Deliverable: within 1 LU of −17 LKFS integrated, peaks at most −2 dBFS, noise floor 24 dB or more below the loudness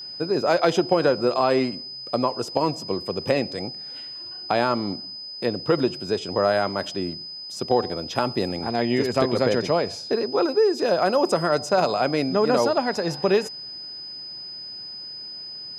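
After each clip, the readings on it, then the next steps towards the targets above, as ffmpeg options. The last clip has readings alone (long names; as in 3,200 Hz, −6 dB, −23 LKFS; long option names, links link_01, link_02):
interfering tone 5,000 Hz; level of the tone −34 dBFS; integrated loudness −24.0 LKFS; sample peak −5.0 dBFS; target loudness −17.0 LKFS
→ -af "bandreject=frequency=5000:width=30"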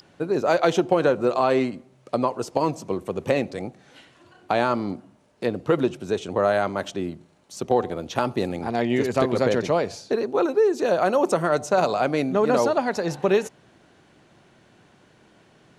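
interfering tone none found; integrated loudness −23.5 LKFS; sample peak −5.0 dBFS; target loudness −17.0 LKFS
→ -af "volume=6.5dB,alimiter=limit=-2dB:level=0:latency=1"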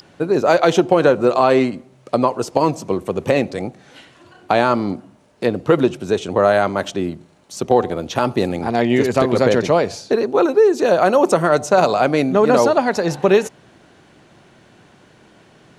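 integrated loudness −17.0 LKFS; sample peak −2.0 dBFS; background noise floor −51 dBFS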